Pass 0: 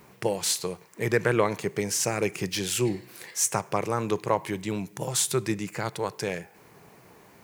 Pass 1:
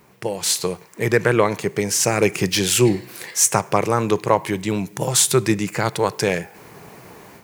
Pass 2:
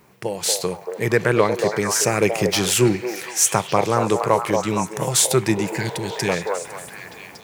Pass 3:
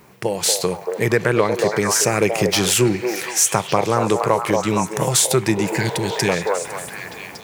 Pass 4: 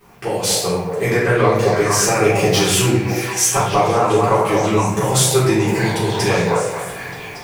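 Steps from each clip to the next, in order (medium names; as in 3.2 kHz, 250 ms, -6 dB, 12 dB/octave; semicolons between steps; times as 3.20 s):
level rider gain up to 11 dB
repeats whose band climbs or falls 232 ms, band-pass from 610 Hz, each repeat 0.7 oct, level -2 dB; spectral replace 5.54–6.26 s, 420–1500 Hz before; trim -1 dB
compression 2:1, threshold -21 dBFS, peak gain reduction 6 dB; trim +5 dB
simulated room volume 150 m³, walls mixed, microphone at 3.6 m; trim -9.5 dB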